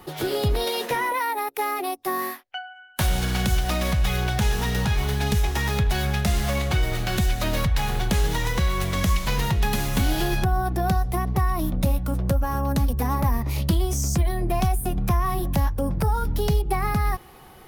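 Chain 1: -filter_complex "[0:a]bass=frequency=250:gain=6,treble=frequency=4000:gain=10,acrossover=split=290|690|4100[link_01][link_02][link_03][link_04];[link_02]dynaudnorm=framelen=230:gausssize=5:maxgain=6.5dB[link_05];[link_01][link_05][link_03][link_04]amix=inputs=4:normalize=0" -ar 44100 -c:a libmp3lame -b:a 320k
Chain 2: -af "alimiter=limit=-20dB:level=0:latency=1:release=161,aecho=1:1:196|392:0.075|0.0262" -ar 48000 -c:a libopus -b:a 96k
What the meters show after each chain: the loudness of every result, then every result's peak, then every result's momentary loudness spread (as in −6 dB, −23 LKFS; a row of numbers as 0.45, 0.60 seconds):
−19.0, −30.0 LKFS; −3.5, −19.0 dBFS; 4, 1 LU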